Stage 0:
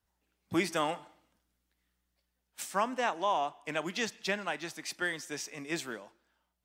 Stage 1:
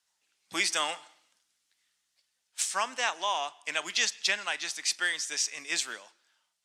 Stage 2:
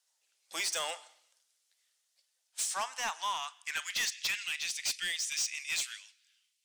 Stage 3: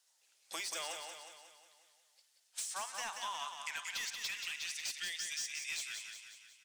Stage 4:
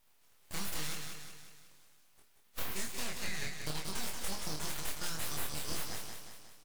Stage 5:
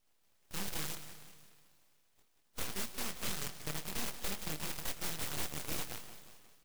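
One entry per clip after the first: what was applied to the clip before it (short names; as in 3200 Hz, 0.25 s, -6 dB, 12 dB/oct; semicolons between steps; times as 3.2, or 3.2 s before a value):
weighting filter ITU-R 468
high-pass sweep 520 Hz -> 2400 Hz, 2.29–4.39; high shelf 3000 Hz +10.5 dB; soft clip -19.5 dBFS, distortion -8 dB; gain -8 dB
compressor 5:1, threshold -44 dBFS, peak gain reduction 12.5 dB; on a send: feedback echo 0.181 s, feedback 53%, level -6 dB; on the sum: gain +3.5 dB
full-wave rectifier; doubler 26 ms -3 dB; gain +4 dB
in parallel at -5 dB: bit-crush 5-bit; on the sum: reverb RT60 0.75 s, pre-delay 0.118 s, DRR 22 dB; noise-modulated delay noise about 2000 Hz, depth 0.2 ms; gain -5.5 dB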